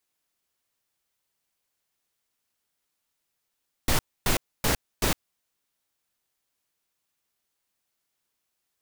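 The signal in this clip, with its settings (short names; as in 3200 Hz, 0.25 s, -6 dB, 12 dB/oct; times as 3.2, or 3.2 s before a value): noise bursts pink, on 0.11 s, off 0.27 s, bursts 4, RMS -22.5 dBFS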